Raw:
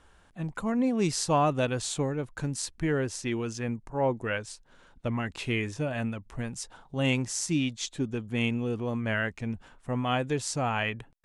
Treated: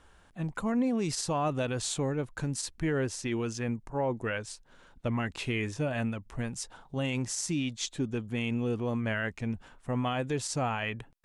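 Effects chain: limiter -21.5 dBFS, peak gain reduction 8 dB

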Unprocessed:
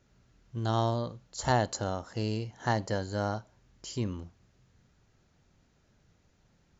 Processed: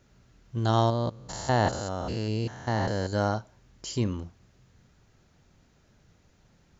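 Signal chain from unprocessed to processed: 0.9–3.13 stepped spectrum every 0.2 s; gain +5 dB

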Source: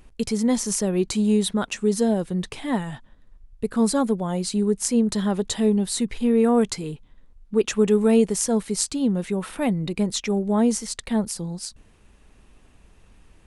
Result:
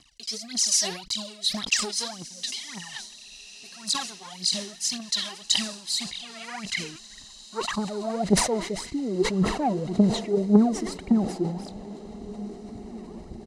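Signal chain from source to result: low shelf 460 Hz +6 dB; comb 1 ms, depth 75%; sample leveller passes 2; reverse; compressor 4:1, threshold -22 dBFS, peak gain reduction 12.5 dB; reverse; rotary speaker horn 0.9 Hz; phaser 1.8 Hz, delay 3.2 ms, feedback 80%; band-pass sweep 4700 Hz -> 430 Hz, 5.9–8.77; diffused feedback echo 1.894 s, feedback 45%, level -16 dB; sustainer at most 88 dB/s; gain +7.5 dB

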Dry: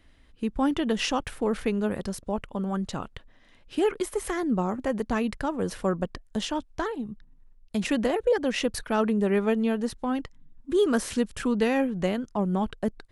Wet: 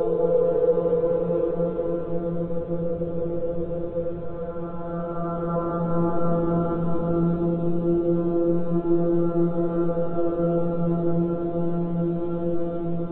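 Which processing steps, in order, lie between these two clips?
steep low-pass 1400 Hz 96 dB/oct; notch 880 Hz, Q 5.6; in parallel at -9 dB: bit-crush 7-bit; on the sum: monotone LPC vocoder at 8 kHz 170 Hz; Paulstretch 8.2×, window 0.50 s, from 8.24

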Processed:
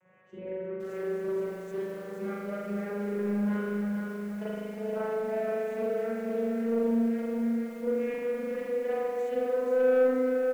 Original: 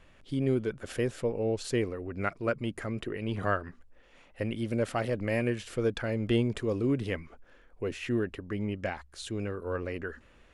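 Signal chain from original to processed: vocoder on a gliding note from F#3, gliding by +6 st; band shelf 3900 Hz -16 dB 1 oct; feedback echo 0.284 s, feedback 40%, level -16 dB; compressor 6:1, threshold -37 dBFS, peak gain reduction 16 dB; overloaded stage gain 32.5 dB; low shelf 410 Hz -7 dB; small resonant body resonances 500/3000 Hz, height 11 dB, ringing for 65 ms; reverb RT60 1.7 s, pre-delay 39 ms, DRR -10.5 dB; soft clip -20.5 dBFS, distortion -15 dB; lo-fi delay 0.473 s, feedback 55%, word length 9-bit, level -5 dB

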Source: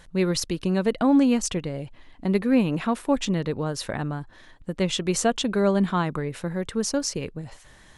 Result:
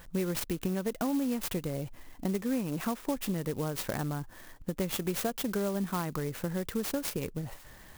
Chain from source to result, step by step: compressor 5:1, threshold -29 dBFS, peak gain reduction 13 dB; clock jitter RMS 0.061 ms

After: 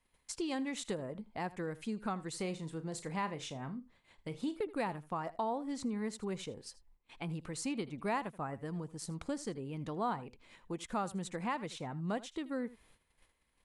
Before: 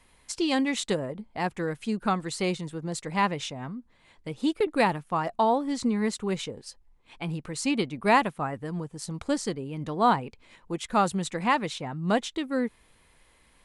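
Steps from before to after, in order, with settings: 2.31–4.57 doubler 37 ms -12 dB; gate -58 dBFS, range -13 dB; echo 80 ms -20 dB; dynamic EQ 3700 Hz, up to -4 dB, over -44 dBFS, Q 0.79; compressor 2:1, threshold -33 dBFS, peak gain reduction 9.5 dB; gain -5 dB

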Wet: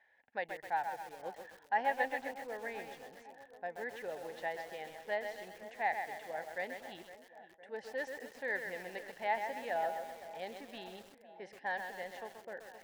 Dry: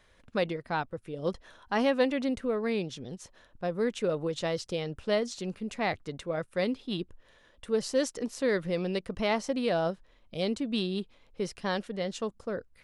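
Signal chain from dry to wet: double band-pass 1200 Hz, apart 1.1 oct; tape echo 0.511 s, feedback 75%, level -13 dB, low-pass 1300 Hz; lo-fi delay 0.13 s, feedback 55%, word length 9-bit, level -6 dB; gain +2 dB

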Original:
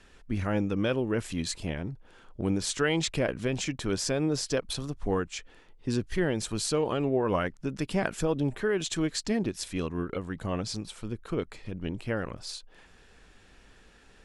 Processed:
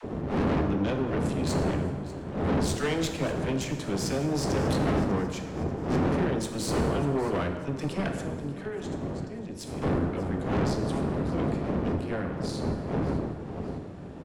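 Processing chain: wind noise 360 Hz -25 dBFS; HPF 73 Hz 12 dB/oct; low shelf 490 Hz +5.5 dB; 8.12–9.82 compressor 5:1, threshold -30 dBFS, peak gain reduction 20 dB; dispersion lows, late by 44 ms, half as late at 420 Hz; tube stage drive 24 dB, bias 0.75; feedback echo 0.593 s, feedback 44%, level -17 dB; plate-style reverb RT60 1.5 s, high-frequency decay 0.75×, DRR 5 dB

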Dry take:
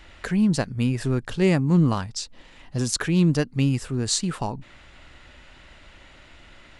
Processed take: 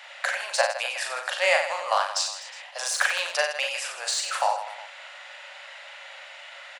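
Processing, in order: de-esser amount 55%; rippled Chebyshev high-pass 540 Hz, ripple 3 dB; reverse bouncing-ball echo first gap 40 ms, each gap 1.3×, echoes 5; gain +7.5 dB

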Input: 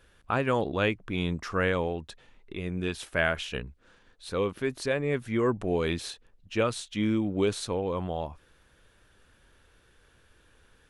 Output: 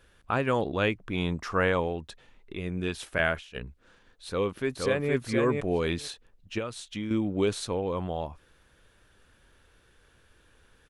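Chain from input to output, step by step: 1.06–1.8 dynamic EQ 860 Hz, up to +6 dB, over -45 dBFS, Q 1.4; 3.18–3.61 gate -31 dBFS, range -12 dB; 4.28–5.13 echo throw 0.47 s, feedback 10%, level -3 dB; 6.58–7.11 compressor 3:1, threshold -33 dBFS, peak gain reduction 9 dB

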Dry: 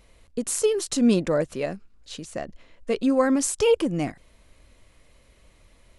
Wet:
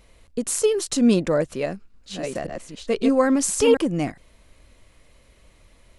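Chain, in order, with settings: 1.42–3.77 reverse delay 0.524 s, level -4 dB; gain +2 dB

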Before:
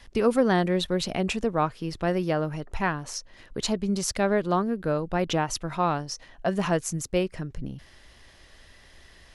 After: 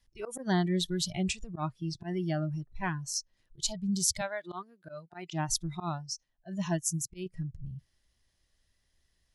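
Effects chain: 4.21–5.33 weighting filter A; spectral noise reduction 20 dB; tone controls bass +8 dB, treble +11 dB; auto swell 0.102 s; 5.89–7.26 upward expander 1.5:1, over -34 dBFS; gain -7.5 dB

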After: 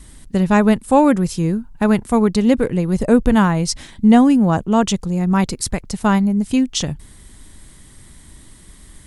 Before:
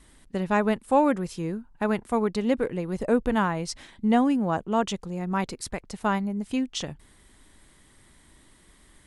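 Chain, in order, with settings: tone controls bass +9 dB, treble +7 dB; gain +6.5 dB

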